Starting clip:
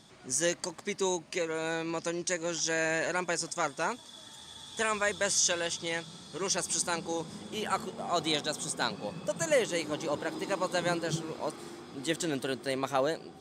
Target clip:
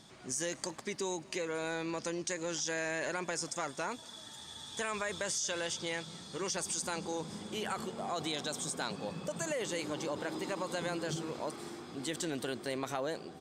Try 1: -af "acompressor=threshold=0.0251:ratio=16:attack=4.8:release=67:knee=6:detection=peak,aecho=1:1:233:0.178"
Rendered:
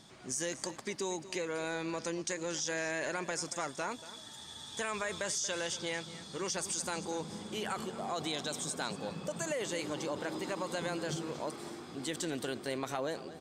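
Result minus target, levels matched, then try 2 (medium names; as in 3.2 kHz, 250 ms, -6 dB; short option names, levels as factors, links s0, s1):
echo-to-direct +9 dB
-af "acompressor=threshold=0.0251:ratio=16:attack=4.8:release=67:knee=6:detection=peak,aecho=1:1:233:0.0631"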